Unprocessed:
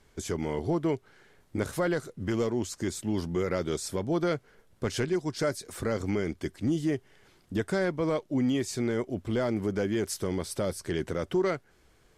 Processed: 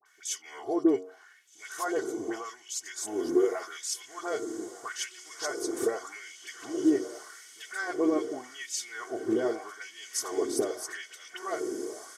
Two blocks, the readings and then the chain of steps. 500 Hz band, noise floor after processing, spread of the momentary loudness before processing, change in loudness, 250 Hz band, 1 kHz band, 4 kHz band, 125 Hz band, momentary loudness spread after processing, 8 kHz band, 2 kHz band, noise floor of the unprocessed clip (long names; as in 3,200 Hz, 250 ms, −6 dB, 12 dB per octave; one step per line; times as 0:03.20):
−1.5 dB, −56 dBFS, 6 LU, −1.0 dB, −2.0 dB, 0.0 dB, +0.5 dB, −24.0 dB, 16 LU, +5.0 dB, 0.0 dB, −63 dBFS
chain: hum removal 92.17 Hz, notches 16
downward compressor, threshold −30 dBFS, peak gain reduction 7.5 dB
thirty-one-band graphic EQ 125 Hz +8 dB, 200 Hz +6 dB, 2,500 Hz −8 dB, 4,000 Hz −7 dB, 6,300 Hz +6 dB
on a send: feedback delay with all-pass diffusion 1,654 ms, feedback 56%, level −10 dB
on the sum: auto-filter high-pass sine 0.83 Hz 320–2,900 Hz
comb filter 2.7 ms, depth 88%
all-pass dispersion highs, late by 59 ms, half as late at 1,500 Hz